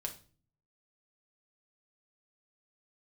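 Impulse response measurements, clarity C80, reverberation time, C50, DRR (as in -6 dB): 18.0 dB, 0.40 s, 12.0 dB, 2.0 dB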